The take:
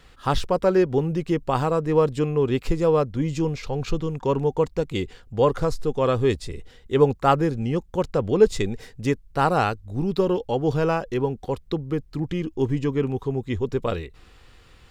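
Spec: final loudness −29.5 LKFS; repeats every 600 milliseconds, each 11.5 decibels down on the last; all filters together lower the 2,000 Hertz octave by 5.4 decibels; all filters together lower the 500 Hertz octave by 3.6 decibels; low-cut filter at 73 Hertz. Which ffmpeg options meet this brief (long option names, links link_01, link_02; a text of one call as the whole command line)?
ffmpeg -i in.wav -af "highpass=73,equalizer=frequency=500:width_type=o:gain=-4,equalizer=frequency=2000:width_type=o:gain=-7.5,aecho=1:1:600|1200|1800:0.266|0.0718|0.0194,volume=-3.5dB" out.wav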